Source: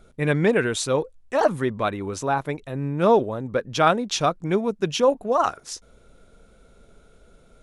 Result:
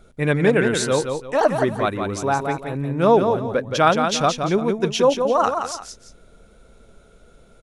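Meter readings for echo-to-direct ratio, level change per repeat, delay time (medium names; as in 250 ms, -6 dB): -5.5 dB, -10.0 dB, 172 ms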